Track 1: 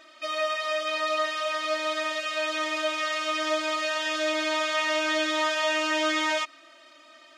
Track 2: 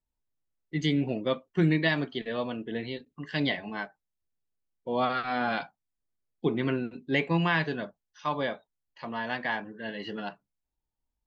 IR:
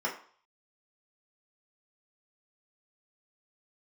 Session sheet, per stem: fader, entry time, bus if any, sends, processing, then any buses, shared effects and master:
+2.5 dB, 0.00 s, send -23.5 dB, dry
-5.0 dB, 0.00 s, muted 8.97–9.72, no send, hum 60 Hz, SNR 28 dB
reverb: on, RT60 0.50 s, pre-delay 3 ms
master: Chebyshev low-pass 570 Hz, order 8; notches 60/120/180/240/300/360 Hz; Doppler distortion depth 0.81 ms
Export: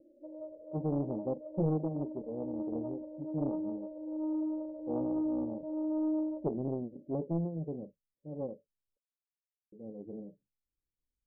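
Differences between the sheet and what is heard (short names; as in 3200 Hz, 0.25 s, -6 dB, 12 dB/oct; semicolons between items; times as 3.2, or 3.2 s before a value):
stem 2: missing hum 60 Hz, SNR 28 dB; master: missing notches 60/120/180/240/300/360 Hz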